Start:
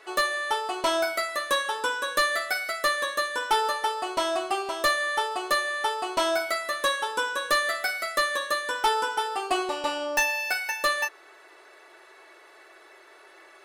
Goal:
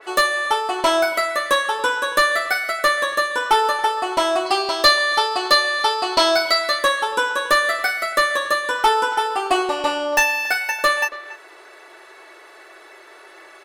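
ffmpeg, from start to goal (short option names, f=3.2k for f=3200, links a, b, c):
-filter_complex "[0:a]asettb=1/sr,asplit=3[a][b][c];[a]atrim=end=4.464[d];[b]atrim=start=4.46:end=6.79,asetpts=PTS-STARTPTS,afade=t=in:d=0.004:c=qsin,afade=t=out:st=2.326:d=0.004:c=qsin,equalizer=f=4.5k:t=o:w=0.54:g=14.5[e];[c]atrim=start=6.786[f];[d][e]acrossfade=d=0.004:c1=hsin:c2=qsin[g];[g][f]acrossfade=d=0.004:c1=qsin:c2=hsin,asplit=2[h][i];[i]adelay=280,highpass=300,lowpass=3.4k,asoftclip=type=hard:threshold=-17.5dB,volume=-16dB[j];[h][j]amix=inputs=2:normalize=0,adynamicequalizer=threshold=0.0126:dfrequency=3100:dqfactor=0.7:tfrequency=3100:tqfactor=0.7:attack=5:release=100:ratio=0.375:range=2:mode=cutabove:tftype=highshelf,volume=7.5dB"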